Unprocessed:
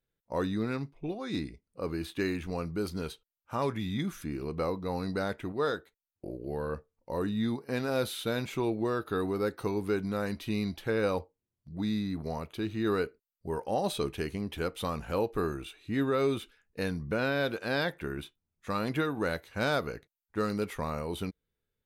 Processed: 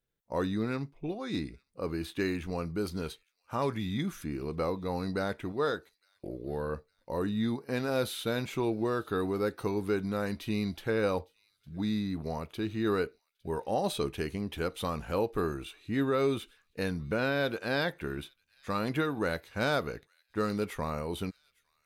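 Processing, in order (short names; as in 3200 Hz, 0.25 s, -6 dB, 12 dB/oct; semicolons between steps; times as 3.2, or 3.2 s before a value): thin delay 0.858 s, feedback 46%, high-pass 2700 Hz, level -24 dB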